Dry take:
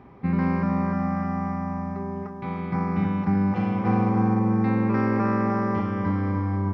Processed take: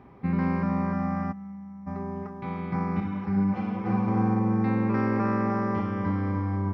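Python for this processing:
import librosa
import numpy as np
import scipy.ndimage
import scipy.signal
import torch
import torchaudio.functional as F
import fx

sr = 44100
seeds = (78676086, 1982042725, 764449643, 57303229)

y = fx.stiff_resonator(x, sr, f0_hz=98.0, decay_s=0.74, stiffness=0.008, at=(1.31, 1.86), fade=0.02)
y = fx.ensemble(y, sr, at=(3.0, 4.08))
y = y * librosa.db_to_amplitude(-2.5)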